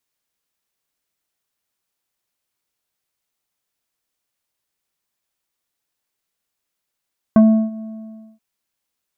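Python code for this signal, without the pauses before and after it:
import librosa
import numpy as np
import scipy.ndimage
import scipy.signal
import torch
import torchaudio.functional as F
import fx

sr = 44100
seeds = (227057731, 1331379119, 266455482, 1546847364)

y = fx.sub_voice(sr, note=57, wave='square', cutoff_hz=630.0, q=0.71, env_oct=1.0, env_s=0.06, attack_ms=1.8, decay_s=0.34, sustain_db=-21.5, release_s=0.59, note_s=0.44, slope=24)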